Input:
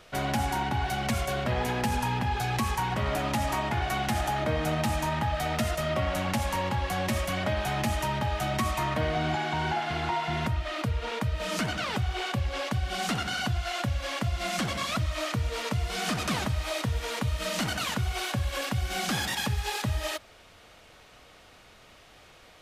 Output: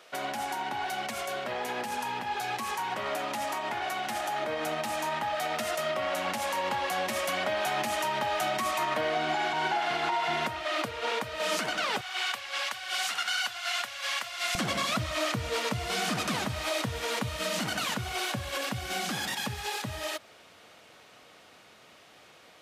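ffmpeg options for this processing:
-af "asetnsamples=n=441:p=0,asendcmd='12.01 highpass f 1200;14.55 highpass f 160',highpass=370,alimiter=limit=-24dB:level=0:latency=1:release=113,dynaudnorm=f=660:g=17:m=4.5dB"

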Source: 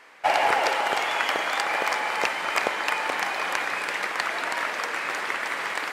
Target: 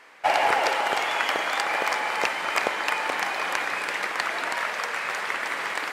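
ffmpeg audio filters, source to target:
-filter_complex "[0:a]asettb=1/sr,asplit=3[a][b][c];[a]atrim=end=4.564[d];[b]atrim=start=4.56:end=5.34,asetpts=PTS-STARTPTS,afade=t=in:d=0.004:c=qsin,afade=t=out:st=0.776:d=0.004:c=qsin,equalizer=f=310:w=4:g=-10[e];[c]atrim=start=5.336[f];[d][e]acrossfade=d=0.004:c1=hsin:c2=qsin[g];[g][f]acrossfade=d=0.004:c1=qsin:c2=hsin"

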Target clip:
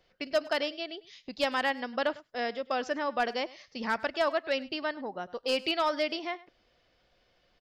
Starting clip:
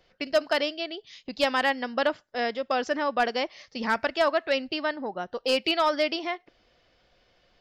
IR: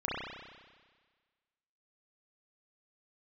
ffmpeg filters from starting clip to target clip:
-af "aecho=1:1:102:0.1,volume=-4.5dB"

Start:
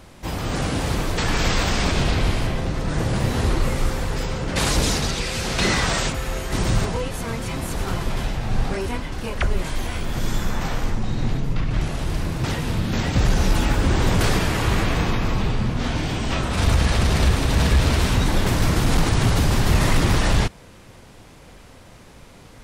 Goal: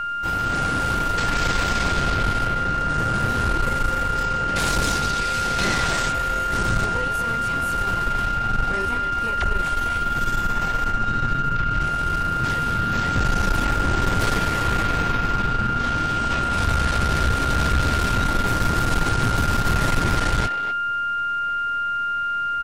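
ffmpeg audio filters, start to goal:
-filter_complex "[0:a]aeval=exprs='val(0)+0.0891*sin(2*PI*1400*n/s)':c=same,aeval=exprs='(tanh(5.62*val(0)+0.6)-tanh(0.6))/5.62':c=same,asplit=2[a][b];[b]adelay=250,highpass=300,lowpass=3.4k,asoftclip=type=hard:threshold=-20dB,volume=-8dB[c];[a][c]amix=inputs=2:normalize=0"

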